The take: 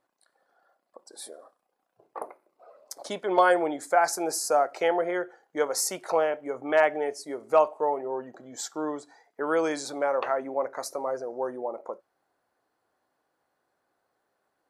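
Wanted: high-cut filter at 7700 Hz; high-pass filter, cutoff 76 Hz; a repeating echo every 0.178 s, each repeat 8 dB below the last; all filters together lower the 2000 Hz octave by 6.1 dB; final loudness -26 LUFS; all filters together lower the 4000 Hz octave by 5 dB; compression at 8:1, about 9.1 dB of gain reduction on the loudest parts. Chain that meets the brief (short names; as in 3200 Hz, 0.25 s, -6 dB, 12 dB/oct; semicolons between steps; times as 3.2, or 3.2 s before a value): HPF 76 Hz; LPF 7700 Hz; bell 2000 Hz -8 dB; bell 4000 Hz -4.5 dB; compressor 8:1, threshold -26 dBFS; feedback echo 0.178 s, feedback 40%, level -8 dB; gain +6.5 dB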